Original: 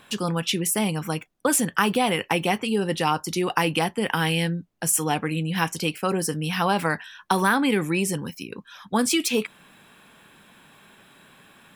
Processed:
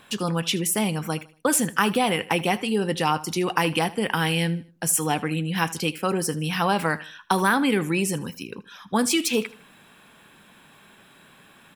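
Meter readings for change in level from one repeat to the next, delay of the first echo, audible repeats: −9.0 dB, 78 ms, 2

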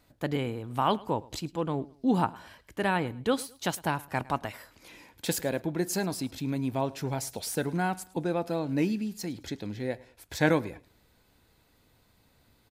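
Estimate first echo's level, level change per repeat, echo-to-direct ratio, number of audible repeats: −22.0 dB, −9.5 dB, −21.5 dB, 2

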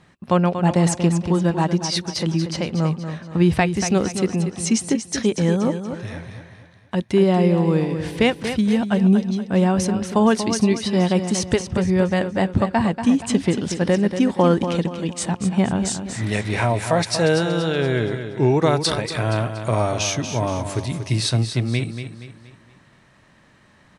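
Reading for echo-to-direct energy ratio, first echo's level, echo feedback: −8.0 dB, −9.0 dB, 41%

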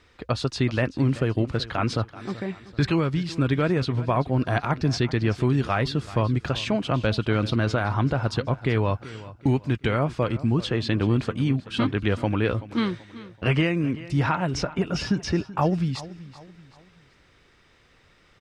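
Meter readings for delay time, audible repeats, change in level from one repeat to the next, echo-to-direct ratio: 382 ms, 3, −8.0 dB, −16.5 dB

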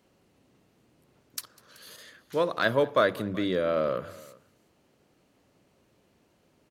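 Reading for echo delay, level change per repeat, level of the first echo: 199 ms, repeats not evenly spaced, −23.5 dB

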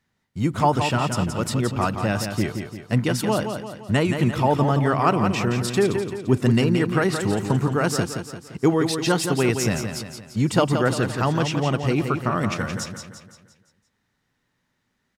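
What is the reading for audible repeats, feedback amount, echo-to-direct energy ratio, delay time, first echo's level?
5, 48%, −6.0 dB, 172 ms, −7.0 dB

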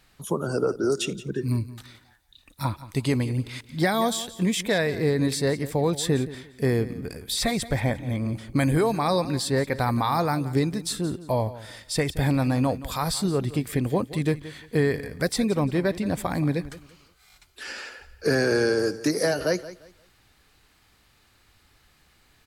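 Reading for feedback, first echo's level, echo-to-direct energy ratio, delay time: 26%, −16.0 dB, −15.5 dB, 174 ms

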